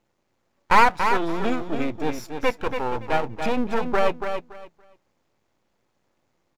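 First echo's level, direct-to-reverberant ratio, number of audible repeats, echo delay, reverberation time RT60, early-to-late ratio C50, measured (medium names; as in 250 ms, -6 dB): -7.0 dB, no reverb, 3, 284 ms, no reverb, no reverb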